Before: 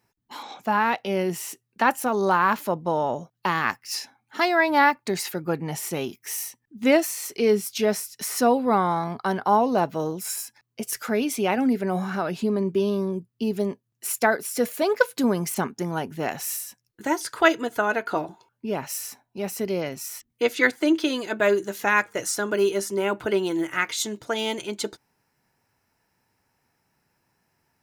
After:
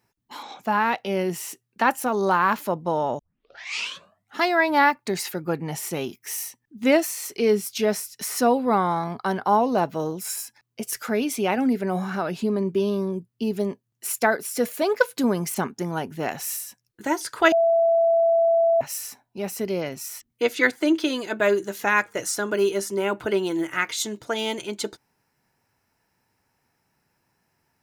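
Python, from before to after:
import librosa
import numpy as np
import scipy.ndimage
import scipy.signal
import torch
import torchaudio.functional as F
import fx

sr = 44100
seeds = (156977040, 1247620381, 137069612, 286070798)

y = fx.edit(x, sr, fx.tape_start(start_s=3.19, length_s=1.21),
    fx.bleep(start_s=17.52, length_s=1.29, hz=667.0, db=-15.5), tone=tone)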